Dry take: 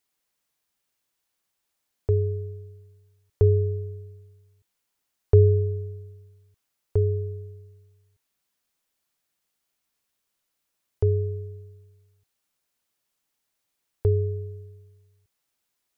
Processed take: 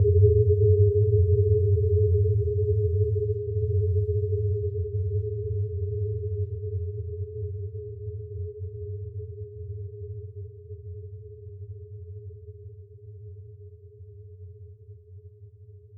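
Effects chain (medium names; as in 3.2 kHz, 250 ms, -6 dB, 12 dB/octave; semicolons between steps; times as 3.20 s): Paulstretch 22×, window 0.10 s, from 7.00 s; level-controlled noise filter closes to 460 Hz, open at -21 dBFS; trim +1.5 dB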